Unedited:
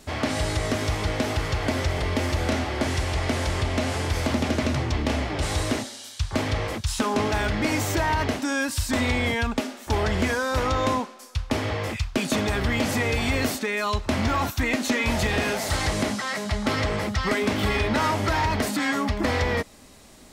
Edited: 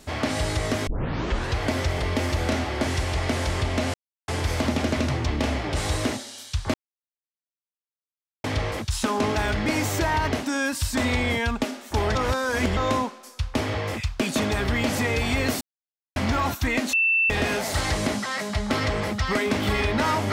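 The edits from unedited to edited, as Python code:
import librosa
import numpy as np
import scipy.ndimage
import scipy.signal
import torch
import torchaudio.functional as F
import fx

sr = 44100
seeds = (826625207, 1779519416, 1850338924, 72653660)

y = fx.edit(x, sr, fx.tape_start(start_s=0.87, length_s=0.72),
    fx.insert_silence(at_s=3.94, length_s=0.34),
    fx.insert_silence(at_s=6.4, length_s=1.7),
    fx.reverse_span(start_s=10.11, length_s=0.62),
    fx.silence(start_s=13.57, length_s=0.55),
    fx.bleep(start_s=14.89, length_s=0.37, hz=2670.0, db=-17.5), tone=tone)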